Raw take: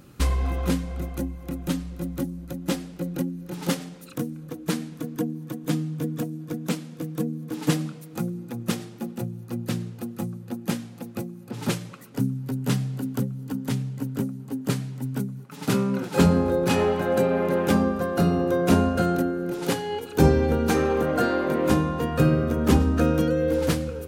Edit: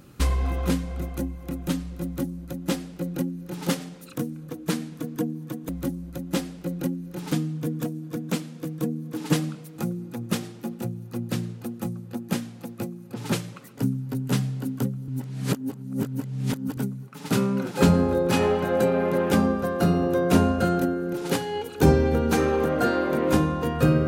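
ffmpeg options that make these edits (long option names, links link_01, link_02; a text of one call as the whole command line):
ffmpeg -i in.wav -filter_complex "[0:a]asplit=5[link_01][link_02][link_03][link_04][link_05];[link_01]atrim=end=5.692[link_06];[link_02]atrim=start=2.038:end=3.672[link_07];[link_03]atrim=start=5.688:end=13.452[link_08];[link_04]atrim=start=13.448:end=15.142,asetpts=PTS-STARTPTS,areverse[link_09];[link_05]atrim=start=15.138[link_10];[link_06][link_07]acrossfade=duration=0.004:curve1=hsin:curve2=hsin[link_11];[link_11][link_08]acrossfade=duration=0.004:curve1=hsin:curve2=hsin[link_12];[link_12][link_09]acrossfade=duration=0.004:curve1=hsin:curve2=hsin[link_13];[link_13][link_10]acrossfade=duration=0.004:curve1=hsin:curve2=hsin" out.wav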